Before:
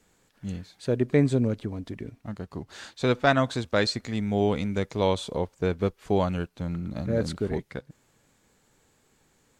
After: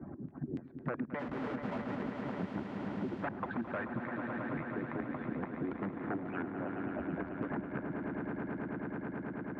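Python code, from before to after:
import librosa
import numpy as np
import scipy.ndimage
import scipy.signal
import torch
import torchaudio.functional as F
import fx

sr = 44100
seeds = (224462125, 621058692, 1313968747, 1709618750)

p1 = fx.hpss_only(x, sr, part='percussive')
p2 = fx.env_lowpass(p1, sr, base_hz=390.0, full_db=-22.5)
p3 = fx.peak_eq(p2, sr, hz=450.0, db=-9.0, octaves=0.53)
p4 = fx.over_compress(p3, sr, threshold_db=-33.0, ratio=-1.0)
p5 = p3 + F.gain(torch.from_numpy(p4), 2.5).numpy()
p6 = 10.0 ** (-22.0 / 20.0) * (np.abs((p5 / 10.0 ** (-22.0 / 20.0) + 3.0) % 4.0 - 2.0) - 1.0)
p7 = fx.filter_lfo_lowpass(p6, sr, shape='square', hz=3.5, low_hz=300.0, high_hz=1600.0, q=1.6)
p8 = fx.schmitt(p7, sr, flips_db=-45.0, at=(1.19, 2.03))
p9 = fx.bandpass_edges(p8, sr, low_hz=110.0, high_hz=2200.0)
p10 = p9 + fx.echo_swell(p9, sr, ms=108, loudest=5, wet_db=-11, dry=0)
p11 = fx.band_squash(p10, sr, depth_pct=100)
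y = F.gain(torch.from_numpy(p11), -8.0).numpy()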